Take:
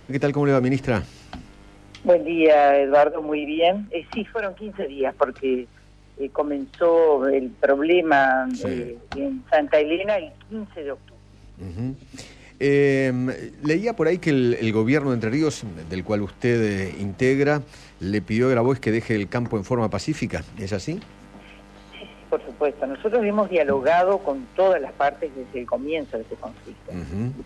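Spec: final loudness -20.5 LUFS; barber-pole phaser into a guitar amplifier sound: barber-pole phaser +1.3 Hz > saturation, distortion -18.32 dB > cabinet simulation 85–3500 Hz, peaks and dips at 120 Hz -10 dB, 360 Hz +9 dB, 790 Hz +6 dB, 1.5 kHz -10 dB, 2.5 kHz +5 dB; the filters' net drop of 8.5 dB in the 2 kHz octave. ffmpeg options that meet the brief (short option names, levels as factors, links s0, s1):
-filter_complex "[0:a]equalizer=f=2000:t=o:g=-9,asplit=2[s0][s1];[s1]afreqshift=1.3[s2];[s0][s2]amix=inputs=2:normalize=1,asoftclip=threshold=0.2,highpass=85,equalizer=f=120:t=q:w=4:g=-10,equalizer=f=360:t=q:w=4:g=9,equalizer=f=790:t=q:w=4:g=6,equalizer=f=1500:t=q:w=4:g=-10,equalizer=f=2500:t=q:w=4:g=5,lowpass=f=3500:w=0.5412,lowpass=f=3500:w=1.3066,volume=1.5"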